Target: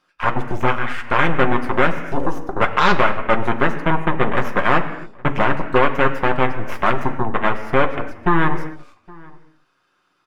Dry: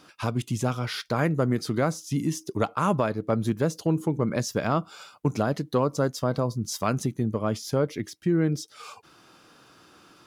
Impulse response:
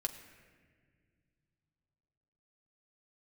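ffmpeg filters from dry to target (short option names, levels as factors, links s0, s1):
-filter_complex "[0:a]aeval=exprs='0.266*(cos(1*acos(clip(val(0)/0.266,-1,1)))-cos(1*PI/2))+0.0841*(cos(2*acos(clip(val(0)/0.266,-1,1)))-cos(2*PI/2))+0.0168*(cos(3*acos(clip(val(0)/0.266,-1,1)))-cos(3*PI/2))+0.0841*(cos(8*acos(clip(val(0)/0.266,-1,1)))-cos(8*PI/2))':c=same,equalizer=f=1500:w=0.52:g=10,afwtdn=0.0501,asplit=2[s0][s1];[s1]adelay=816.3,volume=0.0631,highshelf=f=4000:g=-18.4[s2];[s0][s2]amix=inputs=2:normalize=0[s3];[1:a]atrim=start_sample=2205,afade=t=out:st=0.33:d=0.01,atrim=end_sample=14994[s4];[s3][s4]afir=irnorm=-1:irlink=0"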